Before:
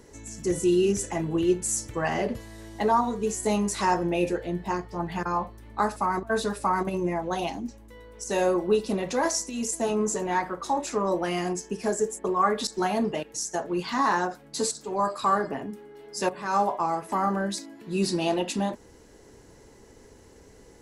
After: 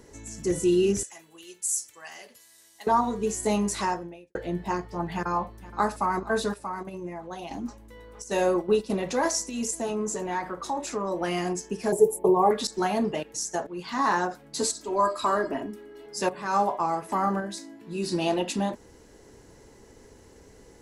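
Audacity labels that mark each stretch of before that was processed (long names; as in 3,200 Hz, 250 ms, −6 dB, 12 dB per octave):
1.030000	2.870000	first difference
3.770000	4.350000	fade out quadratic
5.140000	5.850000	delay throw 470 ms, feedback 65%, level −17.5 dB
6.540000	7.510000	clip gain −9 dB
8.220000	8.960000	noise gate −30 dBFS, range −7 dB
9.710000	11.210000	downward compressor 1.5 to 1, threshold −31 dBFS
11.920000	12.510000	drawn EQ curve 100 Hz 0 dB, 160 Hz +12 dB, 240 Hz −8 dB, 380 Hz +9 dB, 610 Hz +4 dB, 900 Hz +9 dB, 1,500 Hz −23 dB, 2,300 Hz −6 dB, 6,900 Hz −10 dB, 12,000 Hz +14 dB
13.670000	14.090000	fade in, from −12.5 dB
14.620000	16.060000	comb filter 3.1 ms
17.400000	18.120000	tuned comb filter 55 Hz, decay 0.26 s, mix 70%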